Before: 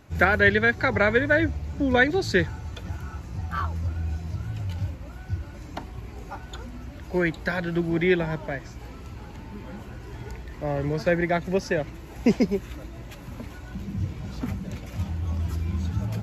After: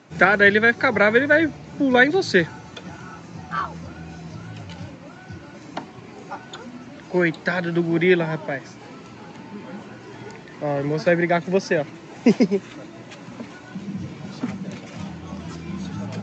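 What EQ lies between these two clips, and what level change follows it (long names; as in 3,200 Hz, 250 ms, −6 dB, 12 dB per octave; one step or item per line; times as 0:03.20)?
high-pass filter 150 Hz 24 dB per octave
Butterworth low-pass 7,300 Hz 48 dB per octave
+4.5 dB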